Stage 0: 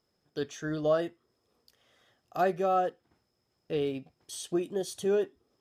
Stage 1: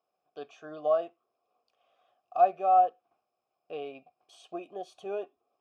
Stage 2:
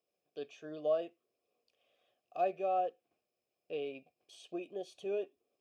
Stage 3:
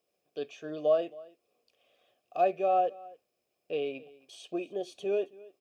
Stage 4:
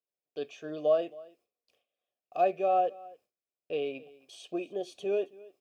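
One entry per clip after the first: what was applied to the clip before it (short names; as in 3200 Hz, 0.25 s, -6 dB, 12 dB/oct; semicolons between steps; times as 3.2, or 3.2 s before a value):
vowel filter a; gain +8 dB
band shelf 1000 Hz -13 dB 1.3 oct
echo 0.27 s -21.5 dB; gain +6.5 dB
gate with hold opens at -57 dBFS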